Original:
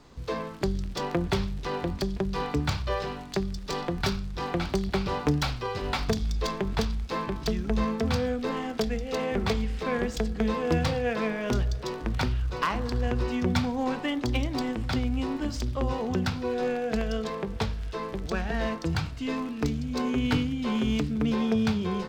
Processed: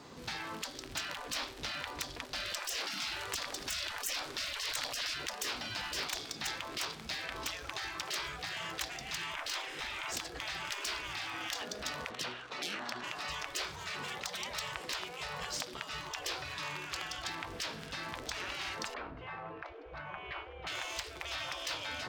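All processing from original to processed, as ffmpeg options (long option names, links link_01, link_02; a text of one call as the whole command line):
ffmpeg -i in.wav -filter_complex "[0:a]asettb=1/sr,asplit=3[link_01][link_02][link_03];[link_01]atrim=end=2.454[link_04];[link_02]atrim=start=2.45:end=5.14,asetpts=PTS-STARTPTS,afade=type=in:duration=0.004:curve=qsin,afade=type=out:start_time=2.686:duration=0.004:curve=qsin,acontrast=38,asplit=2[link_05][link_06];[link_06]adelay=81,lowpass=frequency=1100:poles=1,volume=-5dB,asplit=2[link_07][link_08];[link_08]adelay=81,lowpass=frequency=1100:poles=1,volume=0.26,asplit=2[link_09][link_10];[link_10]adelay=81,lowpass=frequency=1100:poles=1,volume=0.26[link_11];[link_05][link_07][link_09][link_11]amix=inputs=4:normalize=0,atrim=end_sample=118629[link_12];[link_03]atrim=start=5.136[link_13];[link_04][link_12]acrossfade=duration=0.004:curve1=hsin:curve2=qsin[link_14];[link_14][link_13]acrossfade=duration=0.004:curve1=qsin:curve2=hsin,asettb=1/sr,asplit=3[link_15][link_16][link_17];[link_15]atrim=end=9.334[link_18];[link_16]atrim=start=9.33:end=10.12,asetpts=PTS-STARTPTS,afade=type=in:duration=0.004:curve=qsin,afade=type=out:start_time=0.786:duration=0.004:curve=qsin,bass=frequency=250:gain=10,treble=frequency=4000:gain=-3,bandreject=frequency=4500:width=12,asplit=2[link_19][link_20];[link_20]adelay=41,volume=-4.5dB[link_21];[link_19][link_21]amix=inputs=2:normalize=0,atrim=end_sample=34839[link_22];[link_17]atrim=start=10.116[link_23];[link_18][link_22]acrossfade=duration=0.004:curve1=hsin:curve2=qsin[link_24];[link_24][link_23]acrossfade=duration=0.004:curve1=qsin:curve2=hsin,asettb=1/sr,asplit=3[link_25][link_26][link_27];[link_25]atrim=end=12.104[link_28];[link_26]atrim=start=12.1:end=13.04,asetpts=PTS-STARTPTS,afade=type=in:duration=0.004:curve=qsin,afade=type=out:start_time=0.936:duration=0.004:curve=qsin,highpass=480,bandreject=frequency=4900:width=16,adynamicsmooth=sensitivity=7:basefreq=5000[link_29];[link_27]atrim=start=13.036[link_30];[link_28][link_29]acrossfade=duration=0.004:curve1=hsin:curve2=qsin[link_31];[link_31][link_30]acrossfade=duration=0.004:curve1=qsin:curve2=hsin,asettb=1/sr,asplit=3[link_32][link_33][link_34];[link_32]atrim=end=18.944[link_35];[link_33]atrim=start=18.94:end=20.67,asetpts=PTS-STARTPTS,afade=type=in:duration=0.004:curve=qsin,afade=type=out:start_time=1.726:duration=0.004:curve=qsin,lowpass=1300,aemphasis=mode=reproduction:type=50fm[link_36];[link_34]atrim=start=20.666[link_37];[link_35][link_36]acrossfade=duration=0.004:curve1=hsin:curve2=qsin[link_38];[link_38][link_37]acrossfade=duration=0.004:curve1=qsin:curve2=hsin,highpass=110,lowshelf=frequency=320:gain=-4,afftfilt=real='re*lt(hypot(re,im),0.0316)':imag='im*lt(hypot(re,im),0.0316)':win_size=1024:overlap=0.75,volume=4.5dB" out.wav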